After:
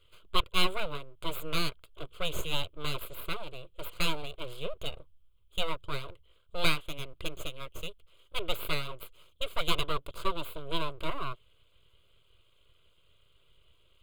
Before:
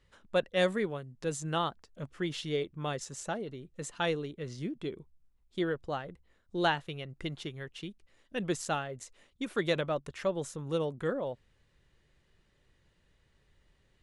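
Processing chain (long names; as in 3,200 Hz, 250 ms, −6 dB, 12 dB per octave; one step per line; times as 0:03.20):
parametric band 3,200 Hz +13.5 dB 0.27 octaves
full-wave rectification
phaser with its sweep stopped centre 1,200 Hz, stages 8
level +5.5 dB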